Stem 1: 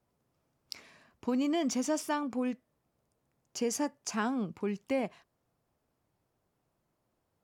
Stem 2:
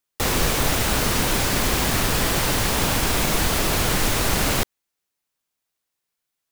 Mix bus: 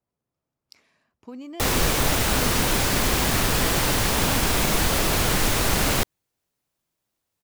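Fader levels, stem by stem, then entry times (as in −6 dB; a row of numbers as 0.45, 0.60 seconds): −8.5, −0.5 decibels; 0.00, 1.40 seconds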